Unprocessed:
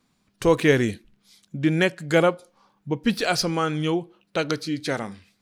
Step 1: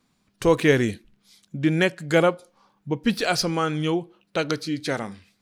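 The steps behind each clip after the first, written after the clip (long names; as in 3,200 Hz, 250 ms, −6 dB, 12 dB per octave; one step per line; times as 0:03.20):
no processing that can be heard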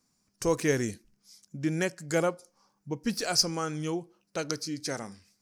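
high shelf with overshoot 4,400 Hz +7 dB, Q 3
level −8 dB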